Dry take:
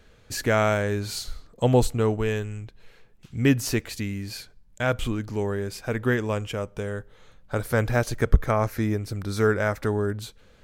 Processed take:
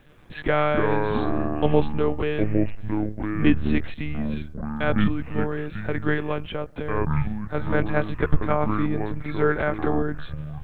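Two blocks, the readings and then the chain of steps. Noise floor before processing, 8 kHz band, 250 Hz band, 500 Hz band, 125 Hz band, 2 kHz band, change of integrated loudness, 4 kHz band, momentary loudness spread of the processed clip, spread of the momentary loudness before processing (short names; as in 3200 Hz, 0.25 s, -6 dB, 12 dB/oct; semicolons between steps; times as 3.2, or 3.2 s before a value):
-55 dBFS, under -30 dB, +3.5 dB, +0.5 dB, -0.5 dB, +0.5 dB, +0.5 dB, -4.0 dB, 9 LU, 13 LU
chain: monotone LPC vocoder at 8 kHz 150 Hz; requantised 12-bit, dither none; echoes that change speed 88 ms, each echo -6 st, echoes 2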